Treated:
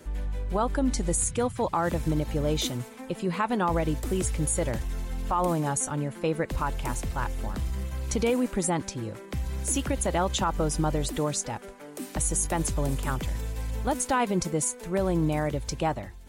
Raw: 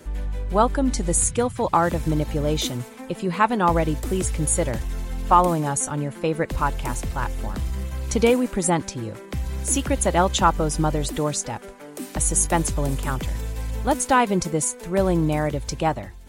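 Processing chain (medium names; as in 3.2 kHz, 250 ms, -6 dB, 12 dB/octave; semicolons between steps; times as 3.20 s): peak limiter -13 dBFS, peak gain reduction 9 dB; trim -3.5 dB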